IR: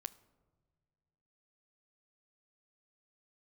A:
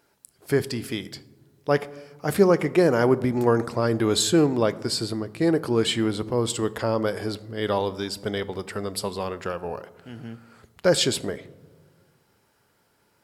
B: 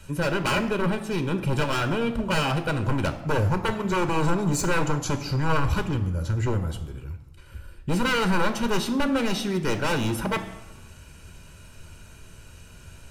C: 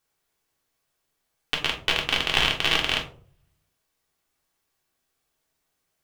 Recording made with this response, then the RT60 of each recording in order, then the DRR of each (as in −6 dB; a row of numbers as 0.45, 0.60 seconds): A; non-exponential decay, 1.1 s, 0.50 s; 14.5, 8.5, −1.0 decibels